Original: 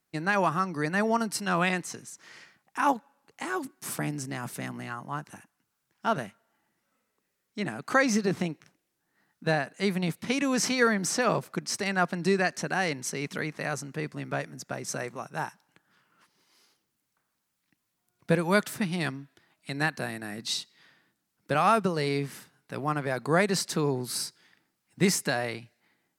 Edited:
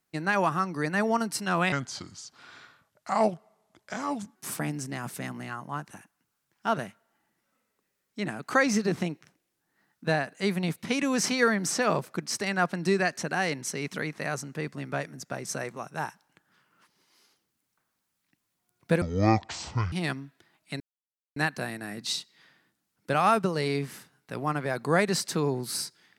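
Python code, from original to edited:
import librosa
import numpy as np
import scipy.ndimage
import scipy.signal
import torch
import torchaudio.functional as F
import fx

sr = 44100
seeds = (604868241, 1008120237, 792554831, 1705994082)

y = fx.edit(x, sr, fx.speed_span(start_s=1.72, length_s=2.03, speed=0.77),
    fx.speed_span(start_s=18.41, length_s=0.48, speed=0.53),
    fx.insert_silence(at_s=19.77, length_s=0.56), tone=tone)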